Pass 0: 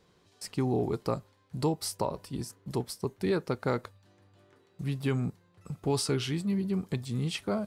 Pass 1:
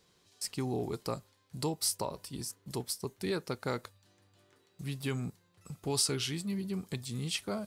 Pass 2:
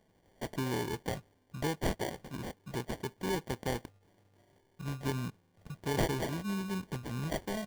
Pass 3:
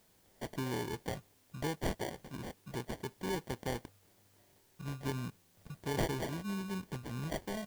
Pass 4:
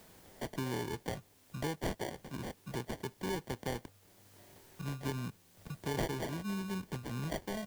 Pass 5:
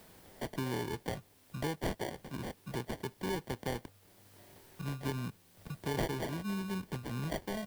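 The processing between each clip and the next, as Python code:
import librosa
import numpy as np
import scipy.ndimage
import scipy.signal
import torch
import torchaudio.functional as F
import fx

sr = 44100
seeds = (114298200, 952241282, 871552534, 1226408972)

y1 = fx.high_shelf(x, sr, hz=2800.0, db=12.0)
y1 = F.gain(torch.from_numpy(y1), -6.0).numpy()
y2 = fx.sample_hold(y1, sr, seeds[0], rate_hz=1300.0, jitter_pct=0)
y3 = fx.dmg_noise_colour(y2, sr, seeds[1], colour='white', level_db=-67.0)
y3 = F.gain(torch.from_numpy(y3), -3.0).numpy()
y4 = fx.band_squash(y3, sr, depth_pct=40)
y5 = fx.peak_eq(y4, sr, hz=6700.0, db=-3.5, octaves=0.45)
y5 = F.gain(torch.from_numpy(y5), 1.0).numpy()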